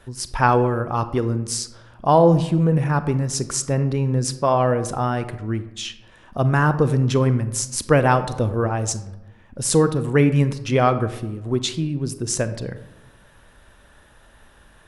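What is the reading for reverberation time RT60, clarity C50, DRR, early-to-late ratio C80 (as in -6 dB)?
1.0 s, 13.0 dB, 11.5 dB, 15.0 dB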